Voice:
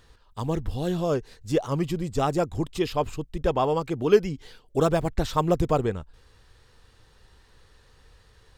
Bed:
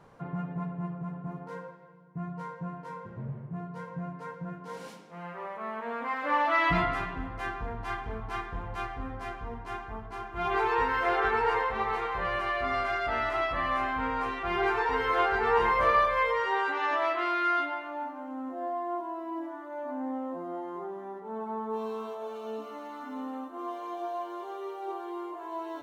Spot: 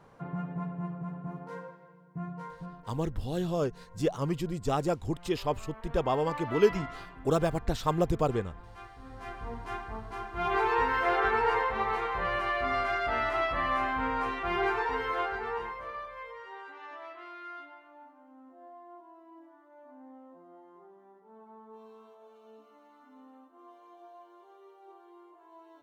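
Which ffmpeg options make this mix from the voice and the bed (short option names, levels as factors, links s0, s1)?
-filter_complex "[0:a]adelay=2500,volume=0.596[s0];[1:a]volume=3.76,afade=t=out:st=2.23:d=0.76:silence=0.266073,afade=t=in:st=9.01:d=0.51:silence=0.237137,afade=t=out:st=14.44:d=1.37:silence=0.141254[s1];[s0][s1]amix=inputs=2:normalize=0"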